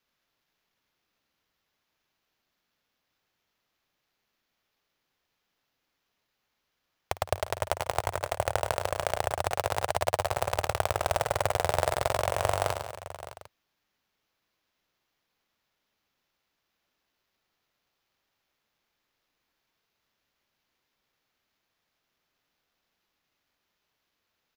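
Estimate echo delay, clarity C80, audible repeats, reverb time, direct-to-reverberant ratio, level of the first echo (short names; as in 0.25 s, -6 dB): 54 ms, none, 6, none, none, -18.0 dB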